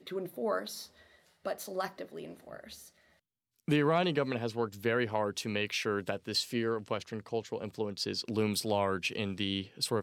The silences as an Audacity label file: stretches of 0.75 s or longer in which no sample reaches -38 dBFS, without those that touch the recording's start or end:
2.740000	3.680000	silence